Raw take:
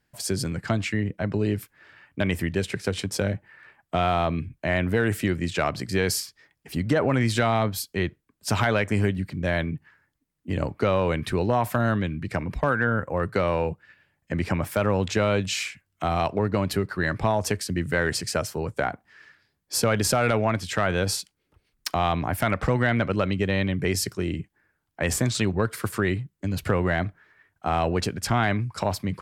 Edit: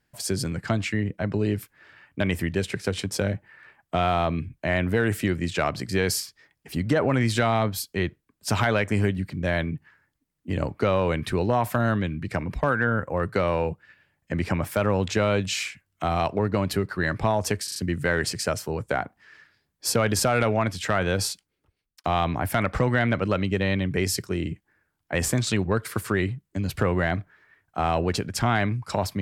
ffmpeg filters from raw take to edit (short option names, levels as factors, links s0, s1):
-filter_complex "[0:a]asplit=5[s0][s1][s2][s3][s4];[s0]atrim=end=17.682[s5];[s1]atrim=start=17.638:end=17.682[s6];[s2]atrim=start=17.638:end=17.682[s7];[s3]atrim=start=17.638:end=21.92,asetpts=PTS-STARTPTS,afade=t=out:st=3.532:d=0.75[s8];[s4]atrim=start=21.92,asetpts=PTS-STARTPTS,afade=t=in:d=0.004:c=hsin[s9];[s5][s6]acrossfade=d=0.004:c1=hsin:c2=hsin[s10];[s10][s7]acrossfade=d=0.004:c1=hsin:c2=hsin[s11];[s8][s9]concat=n=2:v=0:a=1[s12];[s11][s12]acrossfade=d=0.004:c1=hsin:c2=hsin"